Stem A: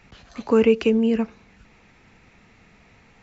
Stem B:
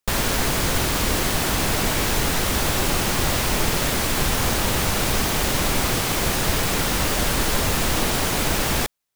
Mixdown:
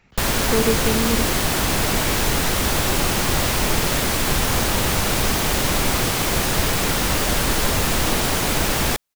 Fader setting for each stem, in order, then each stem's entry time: -4.5 dB, +1.5 dB; 0.00 s, 0.10 s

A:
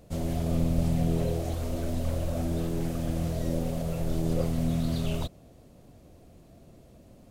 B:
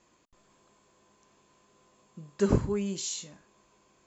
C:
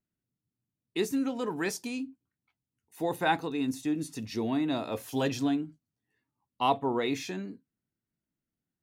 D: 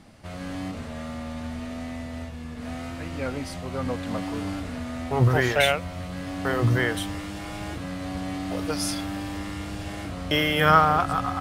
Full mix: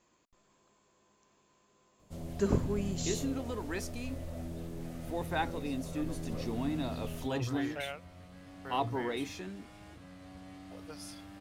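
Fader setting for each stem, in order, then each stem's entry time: -12.0 dB, -4.5 dB, -6.5 dB, -18.5 dB; 2.00 s, 0.00 s, 2.10 s, 2.20 s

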